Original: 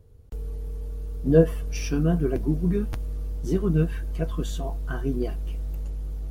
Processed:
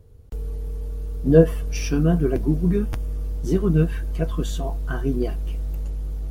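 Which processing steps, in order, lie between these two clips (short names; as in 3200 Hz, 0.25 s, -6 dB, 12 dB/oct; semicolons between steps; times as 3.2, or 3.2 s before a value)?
2.79–3.24 notch 4100 Hz, Q 8; gain +3.5 dB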